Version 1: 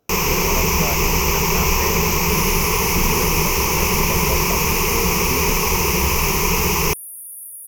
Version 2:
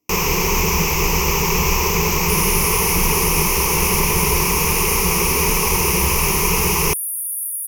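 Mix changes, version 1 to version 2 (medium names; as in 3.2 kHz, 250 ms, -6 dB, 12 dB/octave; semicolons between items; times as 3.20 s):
speech: add cascade formant filter u; second sound +10.0 dB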